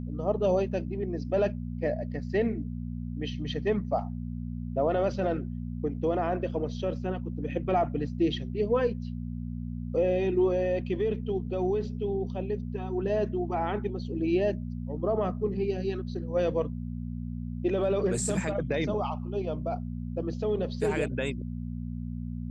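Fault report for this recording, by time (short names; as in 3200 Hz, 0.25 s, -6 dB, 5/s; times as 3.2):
hum 60 Hz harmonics 4 -35 dBFS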